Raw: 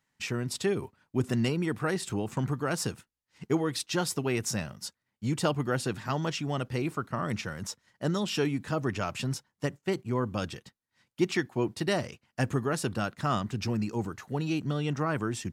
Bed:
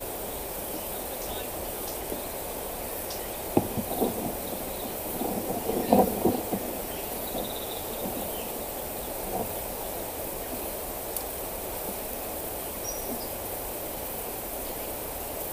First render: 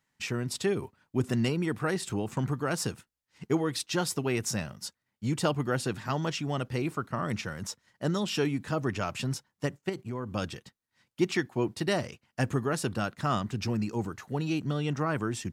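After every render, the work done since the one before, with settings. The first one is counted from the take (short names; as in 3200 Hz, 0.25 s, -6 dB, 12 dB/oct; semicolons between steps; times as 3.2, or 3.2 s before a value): 9.89–10.33 compressor 2.5:1, threshold -33 dBFS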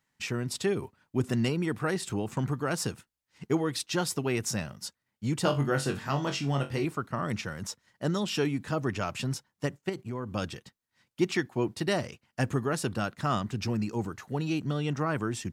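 5.43–6.85 flutter echo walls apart 3.7 m, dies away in 0.23 s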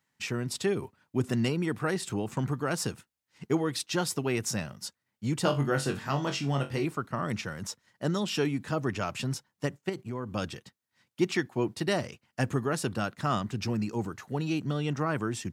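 HPF 74 Hz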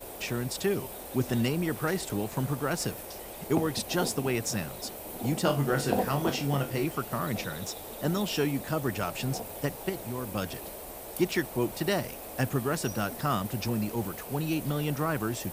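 add bed -7.5 dB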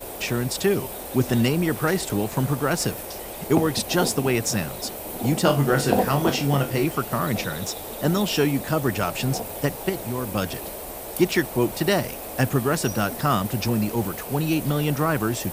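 gain +7 dB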